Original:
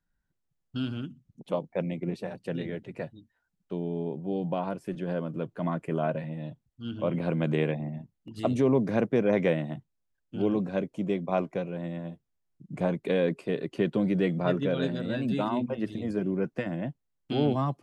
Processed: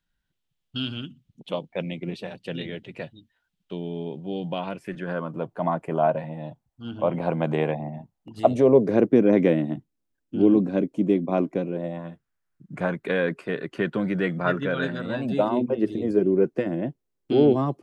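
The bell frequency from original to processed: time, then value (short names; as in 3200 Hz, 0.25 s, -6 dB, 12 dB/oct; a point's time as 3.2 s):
bell +12.5 dB 1 oct
4.61 s 3200 Hz
5.42 s 810 Hz
8.36 s 810 Hz
9.15 s 290 Hz
11.7 s 290 Hz
12.1 s 1500 Hz
14.92 s 1500 Hz
15.62 s 380 Hz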